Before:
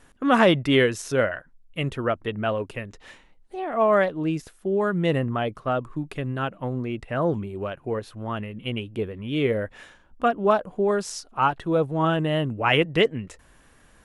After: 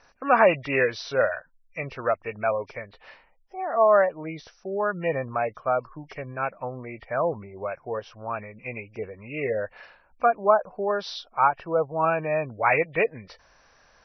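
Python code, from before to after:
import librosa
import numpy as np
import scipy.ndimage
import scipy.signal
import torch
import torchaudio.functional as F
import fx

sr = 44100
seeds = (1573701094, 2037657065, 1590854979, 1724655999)

y = fx.freq_compress(x, sr, knee_hz=1700.0, ratio=1.5)
y = fx.low_shelf_res(y, sr, hz=430.0, db=-9.0, q=1.5)
y = fx.spec_gate(y, sr, threshold_db=-30, keep='strong')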